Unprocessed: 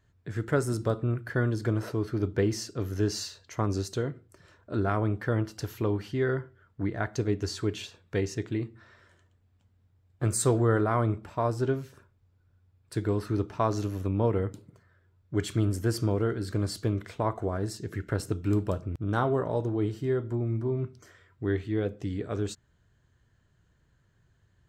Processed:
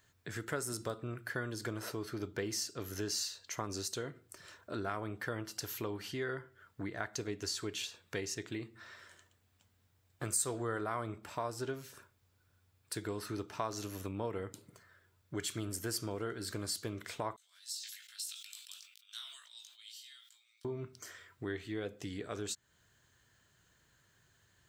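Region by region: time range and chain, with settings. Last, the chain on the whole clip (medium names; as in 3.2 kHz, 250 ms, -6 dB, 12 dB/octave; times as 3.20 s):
17.36–20.65 s: ladder high-pass 3 kHz, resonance 45% + doubling 19 ms -5.5 dB + decay stretcher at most 60 dB/s
whole clip: tilt EQ +3 dB/octave; compression 2:1, threshold -44 dBFS; trim +2 dB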